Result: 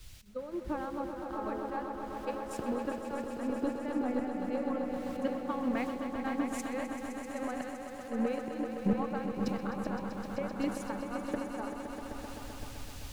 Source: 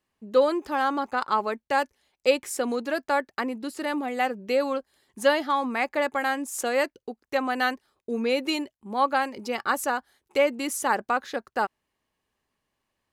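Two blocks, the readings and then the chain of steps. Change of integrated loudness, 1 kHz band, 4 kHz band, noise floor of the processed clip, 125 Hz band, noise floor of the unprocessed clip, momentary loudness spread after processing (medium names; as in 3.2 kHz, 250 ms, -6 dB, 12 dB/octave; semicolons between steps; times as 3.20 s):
-9.5 dB, -12.5 dB, -16.5 dB, -45 dBFS, no reading, -84 dBFS, 9 LU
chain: bass shelf 120 Hz +9.5 dB; transient shaper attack +8 dB, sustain -7 dB; de-hum 107.4 Hz, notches 13; in parallel at -11 dB: word length cut 6-bit, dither triangular; on the sum: slow attack 763 ms; compression 12:1, threshold -40 dBFS, peak gain reduction 21 dB; RIAA curve playback; on a send: echo with a slow build-up 129 ms, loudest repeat 5, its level -7 dB; on the sum: three bands expanded up and down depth 100%; trim +3.5 dB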